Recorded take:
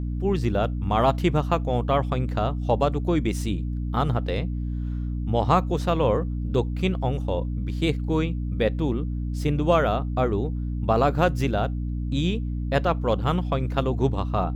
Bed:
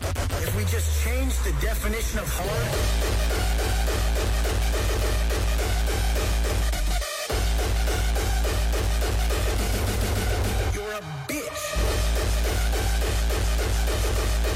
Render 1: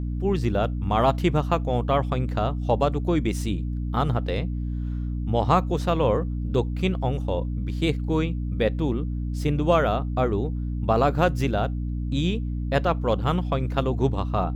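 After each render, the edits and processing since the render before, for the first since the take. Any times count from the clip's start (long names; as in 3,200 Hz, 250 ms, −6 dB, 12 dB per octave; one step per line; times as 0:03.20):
no processing that can be heard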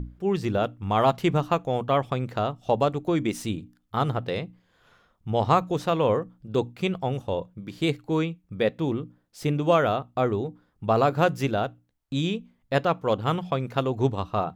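mains-hum notches 60/120/180/240/300 Hz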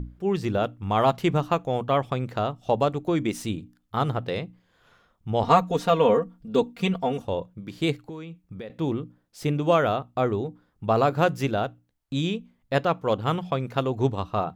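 0:05.43–0:07.25: comb filter 4.3 ms, depth 90%
0:08.07–0:08.70: downward compressor 8 to 1, threshold −34 dBFS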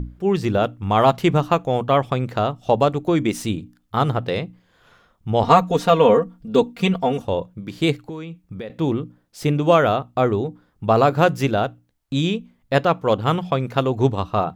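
level +5.5 dB
brickwall limiter −2 dBFS, peak gain reduction 1.5 dB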